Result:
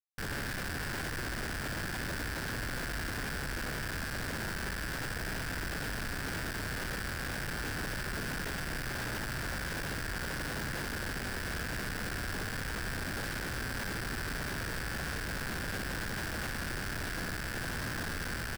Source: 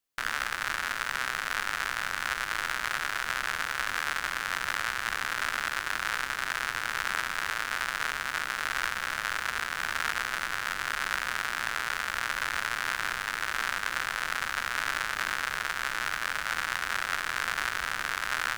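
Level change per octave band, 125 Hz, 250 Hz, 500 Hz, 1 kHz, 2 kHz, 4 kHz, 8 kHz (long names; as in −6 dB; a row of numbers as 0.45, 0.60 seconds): +13.0, +10.5, +3.0, −10.0, −8.0, −6.5, −4.0 decibels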